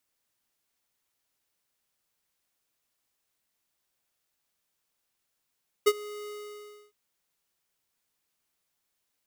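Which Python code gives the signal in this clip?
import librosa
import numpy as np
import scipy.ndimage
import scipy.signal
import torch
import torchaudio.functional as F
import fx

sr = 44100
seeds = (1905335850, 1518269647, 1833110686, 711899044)

y = fx.adsr_tone(sr, wave='square', hz=417.0, attack_ms=15.0, decay_ms=47.0, sustain_db=-22.0, held_s=0.42, release_ms=642.0, level_db=-17.5)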